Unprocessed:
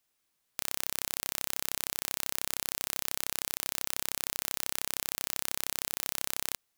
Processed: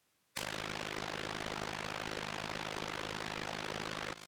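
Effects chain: on a send: feedback delay 207 ms, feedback 32%, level -17 dB; on the sum: low-pass that closes with the level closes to 1.7 kHz, closed at -38.5 dBFS; high-pass 110 Hz 12 dB/octave; treble shelf 3.7 kHz -6.5 dB; in parallel at -10.5 dB: word length cut 8-bit, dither none; on the sum: bass shelf 160 Hz +9.5 dB; time stretch by phase-locked vocoder 0.63×; saturation -34 dBFS, distortion -17 dB; compression, threshold -44 dBFS, peak gain reduction 4.5 dB; loudspeaker Doppler distortion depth 0.79 ms; trim +8.5 dB

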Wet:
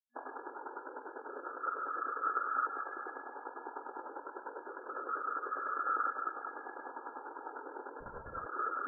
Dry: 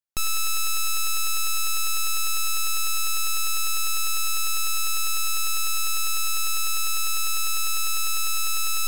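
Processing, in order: drifting ripple filter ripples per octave 1.7, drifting +0.29 Hz, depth 14 dB; spectral gate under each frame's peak -25 dB weak; spring tank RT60 1.1 s, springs 43 ms, chirp 30 ms, DRR 5.5 dB; chorus 1.1 Hz, delay 18.5 ms, depth 6.7 ms; whisper effect; FFT band-pass 240–1700 Hz; 8.00–8.46 s: LPC vocoder at 8 kHz whisper; trim +11.5 dB

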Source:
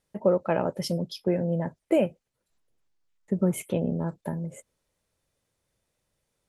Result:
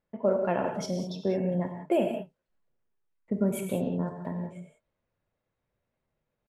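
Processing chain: level-controlled noise filter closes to 2 kHz, open at -21 dBFS; gated-style reverb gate 220 ms flat, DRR 3.5 dB; pitch shift +1 st; trim -3.5 dB

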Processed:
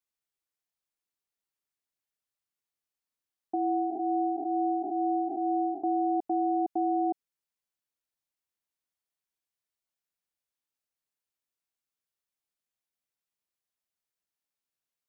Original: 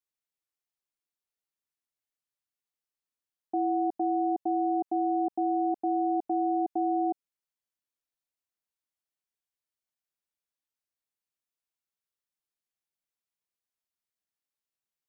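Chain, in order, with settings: 3.55–5.83 s: spectral blur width 180 ms

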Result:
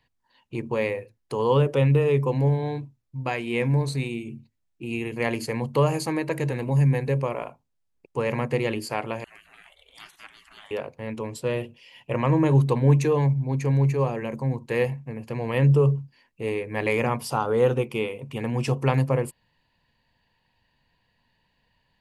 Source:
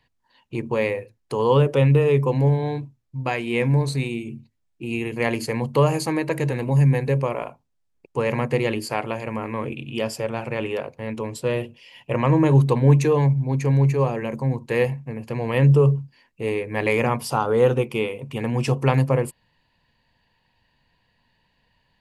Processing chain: 9.24–10.71 s: spectral gate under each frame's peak -25 dB weak; trim -3 dB

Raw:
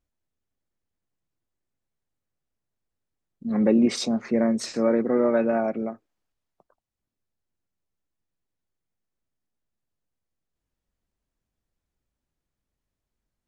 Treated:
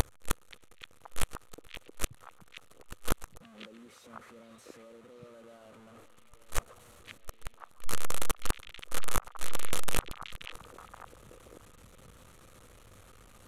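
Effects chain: one-bit delta coder 64 kbps, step -20 dBFS; graphic EQ with 31 bands 100 Hz +7 dB, 500 Hz +9 dB, 1.25 kHz +9 dB, 5 kHz -8 dB; peak limiter -15 dBFS, peak gain reduction 10 dB; inverted gate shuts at -22 dBFS, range -37 dB; repeats whose band climbs or falls 527 ms, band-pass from 2.7 kHz, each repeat -1.4 oct, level -5 dB; trim +7 dB

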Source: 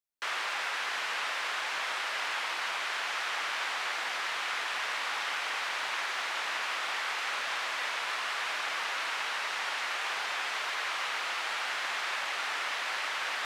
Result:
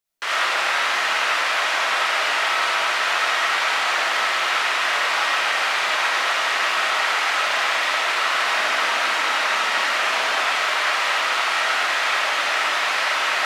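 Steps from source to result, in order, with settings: 8.33–10.42 s: resonant low shelf 170 Hz -8 dB, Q 3; reverberation RT60 0.75 s, pre-delay 25 ms, DRR -4 dB; trim +7.5 dB

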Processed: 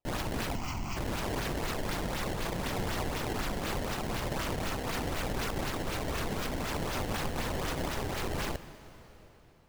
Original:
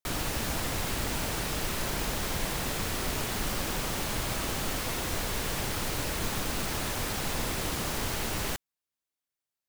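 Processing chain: peak limiter -23.5 dBFS, peak gain reduction 5.5 dB; decimation with a swept rate 21×, swing 160% 4 Hz; 0.55–0.97 s: static phaser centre 2.5 kHz, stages 8; reverberation RT60 4.1 s, pre-delay 53 ms, DRR 13.5 dB

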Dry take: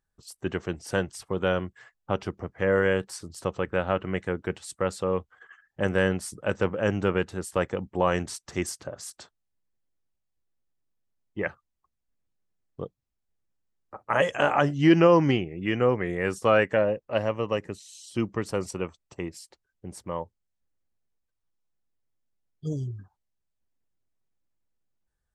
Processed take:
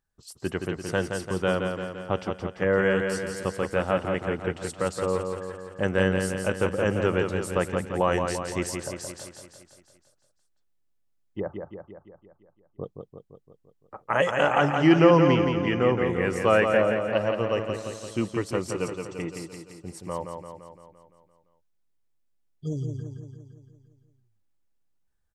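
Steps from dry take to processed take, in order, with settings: 11.40–12.84 s: inverse Chebyshev low-pass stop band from 2.7 kHz, stop band 50 dB; 18.80–19.34 s: comb 6.7 ms, depth 60%; on a send: feedback delay 171 ms, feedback 59%, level -5.5 dB

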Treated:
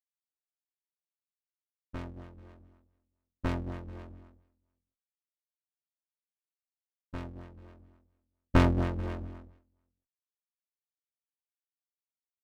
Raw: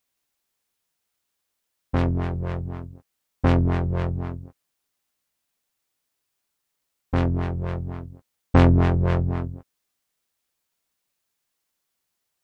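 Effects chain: comb filter that takes the minimum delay 3.2 ms; multi-tap echo 229/438 ms -15.5/-14 dB; upward expansion 2.5:1, over -36 dBFS; trim -2.5 dB

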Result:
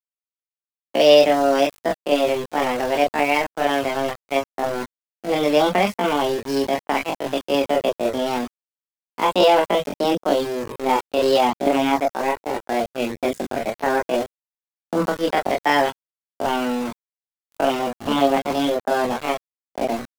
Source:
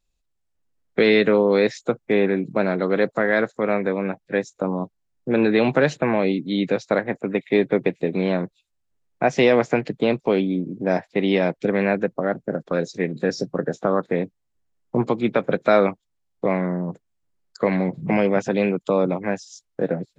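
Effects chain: small samples zeroed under -26 dBFS; chorus voices 4, 0.33 Hz, delay 29 ms, depth 1.5 ms; pitch shift +5.5 st; trim +3.5 dB

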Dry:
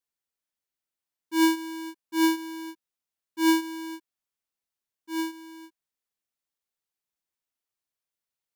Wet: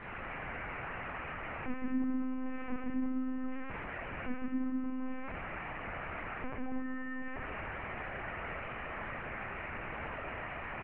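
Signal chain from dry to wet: one-bit delta coder 16 kbps, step -46.5 dBFS; in parallel at -1 dB: peak limiter -35 dBFS, peak gain reduction 11.5 dB; on the sum: compression 2:1, threshold -39 dBFS, peak gain reduction 7.5 dB; tape speed -21%; on a send: bouncing-ball echo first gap 140 ms, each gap 0.75×, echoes 5; on the sum: Schroeder reverb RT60 0.45 s, combs from 29 ms, DRR -3 dB; LPC vocoder at 8 kHz pitch kept

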